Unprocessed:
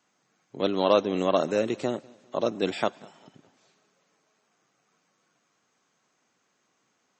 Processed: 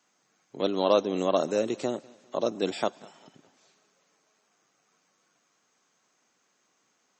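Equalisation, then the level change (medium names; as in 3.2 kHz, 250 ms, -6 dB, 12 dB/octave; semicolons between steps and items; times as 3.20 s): high-pass 180 Hz 6 dB/octave; peaking EQ 6.3 kHz +3.5 dB 1.1 oct; dynamic bell 2 kHz, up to -6 dB, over -41 dBFS, Q 0.91; 0.0 dB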